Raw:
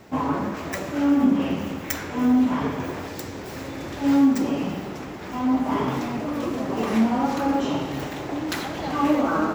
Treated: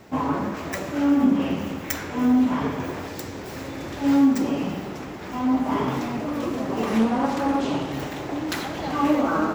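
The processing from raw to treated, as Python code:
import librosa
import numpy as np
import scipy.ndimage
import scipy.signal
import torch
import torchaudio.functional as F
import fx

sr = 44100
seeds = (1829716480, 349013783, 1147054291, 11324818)

y = fx.doppler_dist(x, sr, depth_ms=0.5, at=(6.99, 7.92))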